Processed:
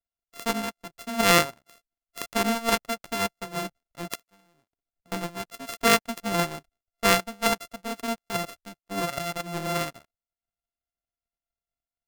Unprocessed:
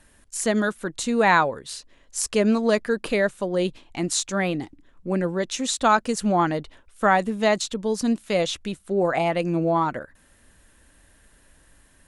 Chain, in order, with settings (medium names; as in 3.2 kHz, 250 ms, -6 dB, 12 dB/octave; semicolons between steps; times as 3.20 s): sorted samples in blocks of 64 samples; 4.15–5.12 s: compression 8:1, threshold -36 dBFS, peak gain reduction 16 dB; power-law waveshaper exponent 2; trim +4 dB